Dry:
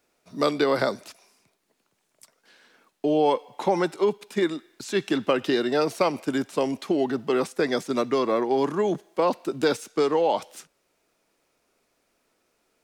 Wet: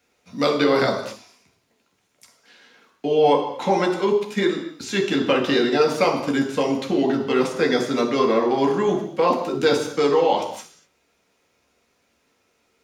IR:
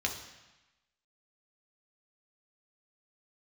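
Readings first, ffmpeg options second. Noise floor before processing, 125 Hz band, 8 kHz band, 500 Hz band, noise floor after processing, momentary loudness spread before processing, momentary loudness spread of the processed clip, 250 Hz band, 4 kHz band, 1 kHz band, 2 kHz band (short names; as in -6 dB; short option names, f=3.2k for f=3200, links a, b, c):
-73 dBFS, +5.0 dB, +3.5 dB, +4.0 dB, -67 dBFS, 6 LU, 6 LU, +4.0 dB, +6.0 dB, +4.5 dB, +5.5 dB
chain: -filter_complex "[1:a]atrim=start_sample=2205,afade=t=out:st=0.31:d=0.01,atrim=end_sample=14112[a];[0:a][a]afir=irnorm=-1:irlink=0"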